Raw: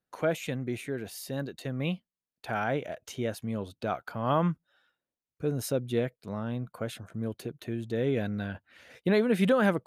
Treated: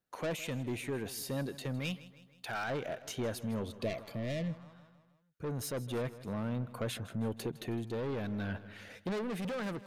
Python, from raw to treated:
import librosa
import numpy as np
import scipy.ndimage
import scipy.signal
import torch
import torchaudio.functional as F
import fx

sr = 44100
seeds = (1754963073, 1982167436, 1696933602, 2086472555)

y = fx.tilt_shelf(x, sr, db=-5.5, hz=1300.0, at=(1.79, 2.7))
y = 10.0 ** (-31.0 / 20.0) * np.tanh(y / 10.0 ** (-31.0 / 20.0))
y = fx.echo_feedback(y, sr, ms=159, feedback_pct=53, wet_db=-17.5)
y = fx.spec_repair(y, sr, seeds[0], start_s=3.83, length_s=0.72, low_hz=700.0, high_hz=1700.0, source='after')
y = fx.rider(y, sr, range_db=4, speed_s=0.5)